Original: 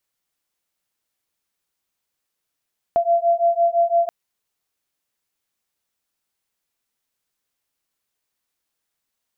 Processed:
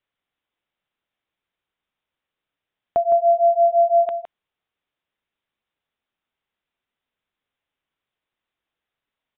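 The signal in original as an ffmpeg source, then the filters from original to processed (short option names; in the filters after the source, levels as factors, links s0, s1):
-f lavfi -i "aevalsrc='0.126*(sin(2*PI*680*t)+sin(2*PI*685.9*t))':d=1.13:s=44100"
-filter_complex "[0:a]asplit=2[s0][s1];[s1]aecho=0:1:162:0.355[s2];[s0][s2]amix=inputs=2:normalize=0,aresample=8000,aresample=44100"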